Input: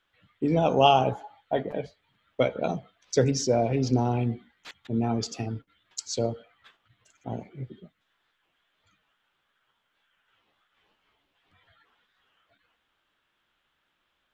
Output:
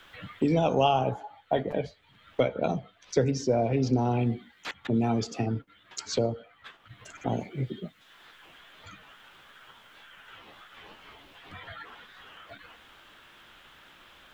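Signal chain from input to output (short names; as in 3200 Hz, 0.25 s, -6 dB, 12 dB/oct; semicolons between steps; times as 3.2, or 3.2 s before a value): 1.75–4.26 high shelf 5300 Hz -7 dB; three-band squash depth 70%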